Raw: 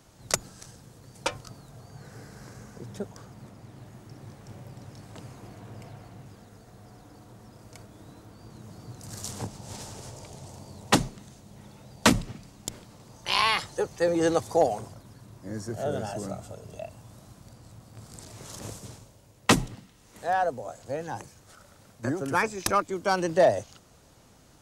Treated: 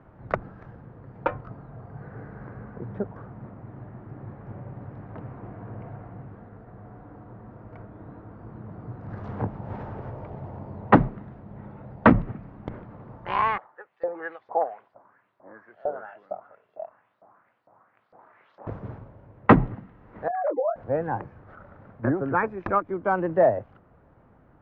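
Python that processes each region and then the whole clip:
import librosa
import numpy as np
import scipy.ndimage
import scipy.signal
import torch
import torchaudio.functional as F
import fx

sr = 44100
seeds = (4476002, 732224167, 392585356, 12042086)

y = fx.chain(x, sr, fx.low_shelf(hz=140.0, db=-12.0),
    fx.filter_lfo_bandpass(shape='saw_up', hz=2.2, low_hz=620.0, high_hz=5100.0, q=2.6), at=(13.58, 18.67))
y = fx.chain(y, sr, fx.sine_speech(),
    fx.over_compress(threshold_db=-33.0, ratio=-1.0),
    fx.doubler(ms=23.0, db=-8.0), at=(20.28, 20.76))
y = fx.rider(y, sr, range_db=3, speed_s=0.5)
y = scipy.signal.sosfilt(scipy.signal.butter(4, 1700.0, 'lowpass', fs=sr, output='sos'), y)
y = fx.end_taper(y, sr, db_per_s=450.0)
y = y * librosa.db_to_amplitude(4.0)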